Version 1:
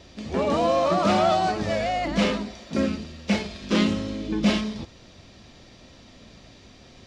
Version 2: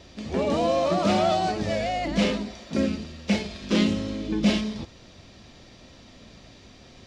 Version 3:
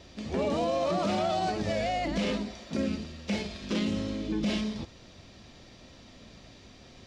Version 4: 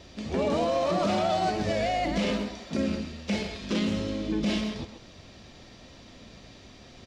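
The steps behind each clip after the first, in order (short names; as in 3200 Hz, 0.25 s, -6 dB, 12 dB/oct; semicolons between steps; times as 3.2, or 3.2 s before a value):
dynamic EQ 1200 Hz, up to -6 dB, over -39 dBFS, Q 1.3
limiter -18 dBFS, peak gain reduction 8 dB; gain -2.5 dB
speakerphone echo 0.13 s, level -7 dB; gain +2 dB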